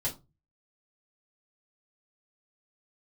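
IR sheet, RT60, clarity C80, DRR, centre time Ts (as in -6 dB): 0.25 s, 21.0 dB, -7.0 dB, 15 ms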